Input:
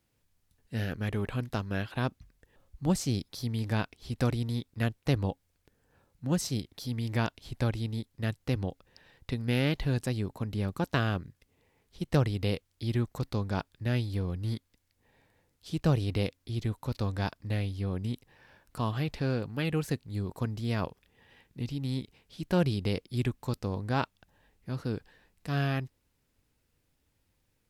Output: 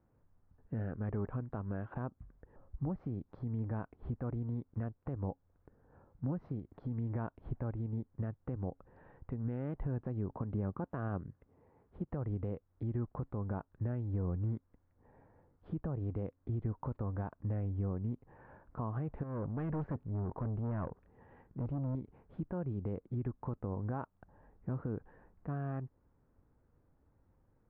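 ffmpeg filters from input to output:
-filter_complex "[0:a]asettb=1/sr,asplit=3[s0][s1][s2];[s0]atrim=end=10.384[s3];[s1]atrim=start=10.38:end=12.12,asetpts=PTS-STARTPTS,afade=t=in:d=0.004:c=qsin,afade=t=out:st=1.736:d=0.004:c=qsin,highpass=f=63:p=1[s4];[s2]atrim=start=12.116[s5];[s3][s4]acrossfade=d=0.004:c1=hsin:c2=qsin[s6];[s6][s5]acrossfade=d=0.004:c1=qsin:c2=hsin,asettb=1/sr,asplit=3[s7][s8][s9];[s7]atrim=end=19.234[s10];[s8]atrim=start=19.23:end=21.95,asetpts=PTS-STARTPTS,afade=t=in:d=0.004:c=qsin,afade=t=out:st=2.716:d=0.004:c=qsin,aeval=exprs='(tanh(70.8*val(0)+0.25)-tanh(0.25))/70.8':c=same[s11];[s9]atrim=start=21.946[s12];[s10][s11]acrossfade=d=0.004:c1=hsin:c2=qsin[s13];[s13][s12]acrossfade=d=0.004:c1=qsin:c2=hsin,acompressor=threshold=0.0126:ratio=2.5,alimiter=level_in=2.66:limit=0.0631:level=0:latency=1:release=134,volume=0.376,lowpass=f=1300:w=0.5412,lowpass=f=1300:w=1.3066,volume=1.78"

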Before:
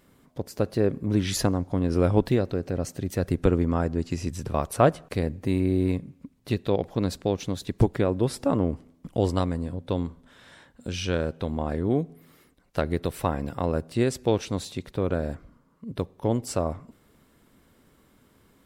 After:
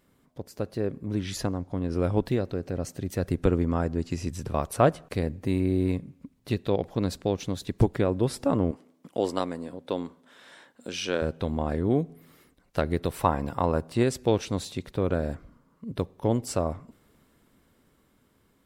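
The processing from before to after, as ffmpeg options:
-filter_complex "[0:a]asettb=1/sr,asplit=3[s0][s1][s2];[s0]atrim=end=1.194[s3];[s1]atrim=start=1.19:end=2.02,asetpts=PTS-STARTPTS,afade=t=in:d=0.004:c=qsin,afade=t=out:st=0.826:d=0.004:c=qsin,highshelf=f=8200:g=-5[s4];[s2]atrim=start=2.016[s5];[s3][s4]acrossfade=d=0.004:c1=hsin:c2=qsin[s6];[s6][s5]acrossfade=d=0.004:c1=qsin:c2=hsin,asettb=1/sr,asplit=3[s7][s8][s9];[s7]atrim=end=8.714[s10];[s8]atrim=start=8.71:end=11.22,asetpts=PTS-STARTPTS,afade=t=in:d=0.004:c=qsin,afade=t=out:st=2.506:d=0.004:c=qsin,highpass=280[s11];[s9]atrim=start=11.216[s12];[s10][s11]acrossfade=d=0.004:c1=hsin:c2=qsin[s13];[s13][s12]acrossfade=d=0.004:c1=qsin:c2=hsin,asettb=1/sr,asplit=3[s14][s15][s16];[s14]atrim=end=13.104[s17];[s15]atrim=start=13.1:end=14.03,asetpts=PTS-STARTPTS,afade=t=in:d=0.004:c=qsin,afade=t=out:st=0.926:d=0.004:c=qsin,equalizer=f=960:t=o:w=0.77:g=7[s18];[s16]atrim=start=14.026[s19];[s17][s18]acrossfade=d=0.004:c1=hsin:c2=qsin[s20];[s20][s19]acrossfade=d=0.004:c1=qsin:c2=hsin,dynaudnorm=f=440:g=11:m=3.76,volume=0.501"

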